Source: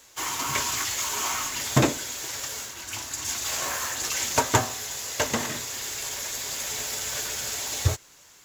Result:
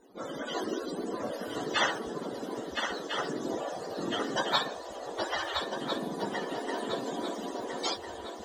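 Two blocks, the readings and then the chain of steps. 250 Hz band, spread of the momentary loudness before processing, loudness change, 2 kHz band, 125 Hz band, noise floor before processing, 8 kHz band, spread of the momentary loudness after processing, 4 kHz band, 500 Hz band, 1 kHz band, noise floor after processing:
-1.5 dB, 8 LU, -6.5 dB, -4.0 dB, -16.5 dB, -54 dBFS, -20.0 dB, 9 LU, -5.0 dB, +1.0 dB, -3.0 dB, -42 dBFS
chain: spectrum mirrored in octaves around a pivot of 650 Hz; swung echo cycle 1.351 s, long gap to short 3:1, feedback 42%, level -6.5 dB; spectral gate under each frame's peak -15 dB weak; gain +6 dB

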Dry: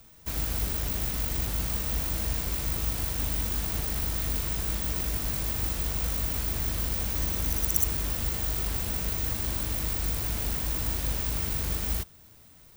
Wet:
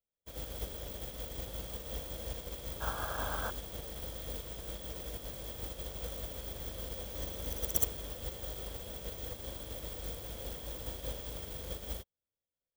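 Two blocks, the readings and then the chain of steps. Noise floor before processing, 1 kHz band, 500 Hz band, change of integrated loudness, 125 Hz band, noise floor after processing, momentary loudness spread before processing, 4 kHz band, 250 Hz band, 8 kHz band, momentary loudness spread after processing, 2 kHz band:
-54 dBFS, -5.0 dB, -2.0 dB, -11.5 dB, -12.5 dB, under -85 dBFS, 2 LU, -8.0 dB, -11.0 dB, -11.0 dB, 6 LU, -8.5 dB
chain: small resonant body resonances 520/3300 Hz, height 15 dB, ringing for 20 ms; painted sound noise, 2.8–3.51, 540–1700 Hz -30 dBFS; upward expander 2.5:1, over -49 dBFS; gain -4 dB

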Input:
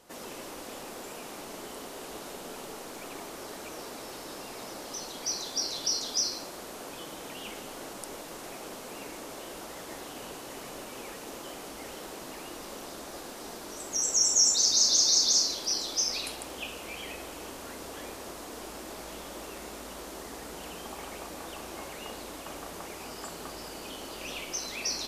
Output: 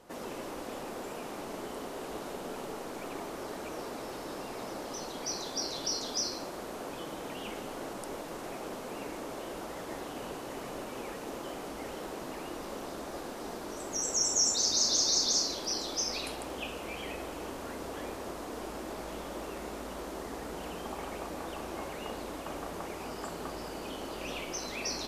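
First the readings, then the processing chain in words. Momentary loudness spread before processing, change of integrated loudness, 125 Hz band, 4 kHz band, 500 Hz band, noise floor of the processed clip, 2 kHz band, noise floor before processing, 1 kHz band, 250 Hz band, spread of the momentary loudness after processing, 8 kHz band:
18 LU, -3.5 dB, +3.5 dB, -4.0 dB, +3.0 dB, -42 dBFS, -0.5 dB, -43 dBFS, +2.0 dB, +3.5 dB, 13 LU, -5.0 dB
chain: high shelf 2300 Hz -9.5 dB; gain +3.5 dB

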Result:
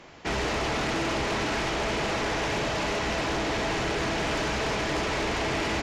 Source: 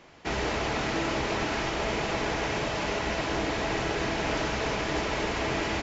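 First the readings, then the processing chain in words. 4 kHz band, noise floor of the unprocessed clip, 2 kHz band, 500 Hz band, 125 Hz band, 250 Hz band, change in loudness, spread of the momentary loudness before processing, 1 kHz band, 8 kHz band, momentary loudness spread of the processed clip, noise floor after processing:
+2.5 dB, -33 dBFS, +1.5 dB, +1.0 dB, +1.0 dB, +1.0 dB, +1.5 dB, 1 LU, +1.5 dB, n/a, 0 LU, -30 dBFS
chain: sine folder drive 9 dB, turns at -15.5 dBFS; gain -8.5 dB

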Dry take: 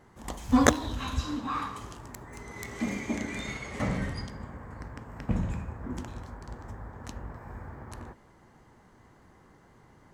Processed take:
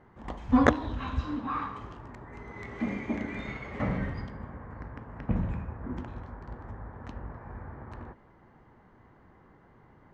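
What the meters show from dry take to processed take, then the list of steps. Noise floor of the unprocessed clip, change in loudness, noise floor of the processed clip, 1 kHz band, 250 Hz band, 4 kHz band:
-58 dBFS, -0.5 dB, -58 dBFS, 0.0 dB, 0.0 dB, -9.0 dB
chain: LPF 2300 Hz 12 dB/oct

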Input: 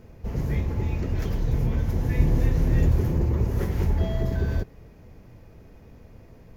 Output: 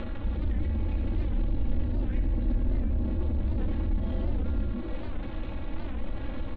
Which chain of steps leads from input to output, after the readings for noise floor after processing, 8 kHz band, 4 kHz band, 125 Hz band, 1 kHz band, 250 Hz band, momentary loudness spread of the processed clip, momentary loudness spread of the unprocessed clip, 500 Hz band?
-34 dBFS, n/a, -5.0 dB, -7.0 dB, -4.5 dB, -3.5 dB, 8 LU, 6 LU, -7.0 dB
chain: delta modulation 32 kbps, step -34 dBFS; frequency-shifting echo 88 ms, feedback 46%, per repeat -140 Hz, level -3.5 dB; in parallel at +1 dB: compressor, threshold -32 dBFS, peak gain reduction 18.5 dB; on the sum: limiter -12.5 dBFS, peak gain reduction 6.5 dB; steep low-pass 4000 Hz 72 dB/oct; soft clip -24.5 dBFS, distortion -8 dB; resonator 320 Hz, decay 0.68 s, mix 70%; upward compressor, threshold -40 dBFS; tilt -2 dB/oct; comb 3.6 ms, depth 87%; record warp 78 rpm, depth 160 cents

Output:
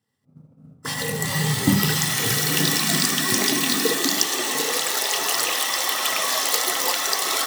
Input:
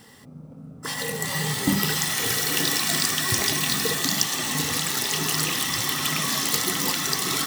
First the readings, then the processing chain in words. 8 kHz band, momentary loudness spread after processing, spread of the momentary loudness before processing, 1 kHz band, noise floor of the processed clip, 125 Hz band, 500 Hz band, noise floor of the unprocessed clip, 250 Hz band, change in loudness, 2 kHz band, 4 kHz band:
+2.0 dB, 4 LU, 4 LU, +4.0 dB, -55 dBFS, +3.5 dB, +4.5 dB, -44 dBFS, +3.5 dB, +2.5 dB, +2.5 dB, +2.0 dB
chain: expander -32 dBFS; high-pass sweep 100 Hz -> 580 Hz, 1.85–5.14; gain +2 dB

